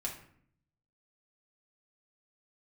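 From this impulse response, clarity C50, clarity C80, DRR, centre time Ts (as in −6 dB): 7.5 dB, 11.5 dB, −2.5 dB, 22 ms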